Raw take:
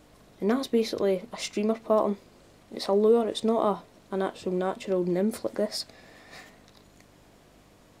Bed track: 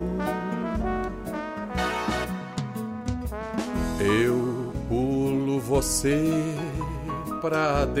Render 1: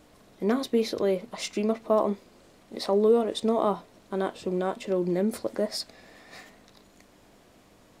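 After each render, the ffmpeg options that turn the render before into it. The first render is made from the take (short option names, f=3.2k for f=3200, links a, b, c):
-af "bandreject=f=50:t=h:w=4,bandreject=f=100:t=h:w=4,bandreject=f=150:t=h:w=4"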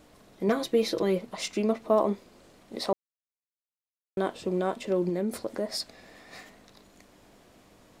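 -filter_complex "[0:a]asettb=1/sr,asplit=3[a][b][c];[a]atrim=end=0.484[d];[b]atrim=start=0.48:end=1.19,asetpts=PTS-STARTPTS,afade=t=in:d=0.004:c=qsin,afade=t=out:st=0.706:d=0.004:c=qsin,aecho=1:1:6:0.65,atrim=end_sample=31311[e];[c]atrim=start=1.186[f];[d][e]acrossfade=d=0.004:c1=hsin:c2=qsin[g];[g][f]acrossfade=d=0.004:c1=qsin:c2=hsin,asettb=1/sr,asplit=3[h][i][j];[h]atrim=end=5.094[k];[i]atrim=start=5.09:end=5.69,asetpts=PTS-STARTPTS,afade=t=in:d=0.004:c=qsin,afade=t=out:st=0.596:d=0.004:c=qsin,acompressor=threshold=-31dB:ratio=1.5:attack=3.2:release=140:knee=1:detection=peak[l];[j]atrim=start=5.686[m];[k][l]acrossfade=d=0.004:c1=hsin:c2=qsin[n];[n][m]acrossfade=d=0.004:c1=qsin:c2=hsin,asplit=3[o][p][q];[o]atrim=end=2.93,asetpts=PTS-STARTPTS,afade=t=out:st=2.926:d=0.004:c=hsin[r];[p]atrim=start=2.93:end=4.17,asetpts=PTS-STARTPTS,volume=0[s];[q]atrim=start=4.17,asetpts=PTS-STARTPTS,afade=t=in:d=0.004:c=hsin[t];[r][s][t]concat=n=3:v=0:a=1"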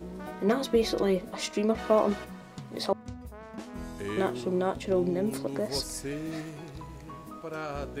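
-filter_complex "[1:a]volume=-12.5dB[a];[0:a][a]amix=inputs=2:normalize=0"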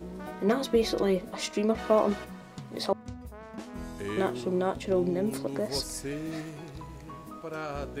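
-af anull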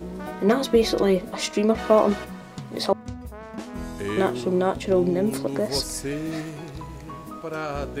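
-af "volume=6dB"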